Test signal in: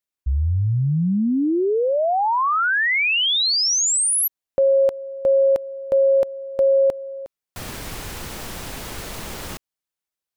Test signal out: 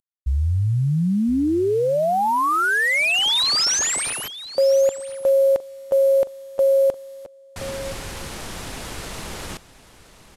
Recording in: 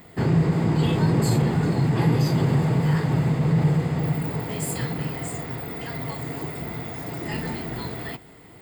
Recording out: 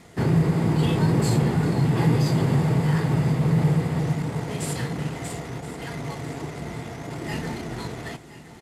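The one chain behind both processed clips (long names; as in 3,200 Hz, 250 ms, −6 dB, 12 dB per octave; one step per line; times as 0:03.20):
variable-slope delta modulation 64 kbit/s
on a send: single-tap delay 1,021 ms −16 dB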